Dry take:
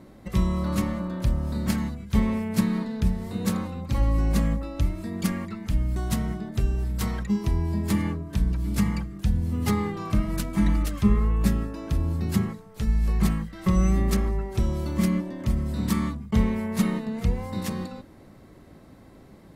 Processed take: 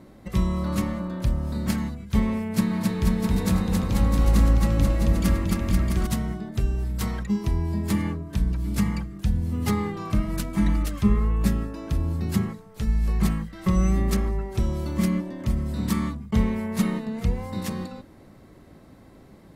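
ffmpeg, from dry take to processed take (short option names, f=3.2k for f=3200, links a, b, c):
-filter_complex "[0:a]asettb=1/sr,asplit=3[a][b][c];[a]atrim=end=2.444[d];[b]atrim=start=2.44:end=6.07,asetpts=PTS-STARTPTS,afade=t=in:d=0.004:c=qsin,afade=t=out:st=3.626:d=0.004:c=qsin,aecho=1:1:270|486|658.8|797|907.6|996.1:0.794|0.631|0.501|0.398|0.316|0.251,atrim=end_sample=160083[e];[c]atrim=start=6.066[f];[d][e]acrossfade=d=0.004:c1=hsin:c2=qsin[g];[g][f]acrossfade=d=0.004:c1=qsin:c2=hsin"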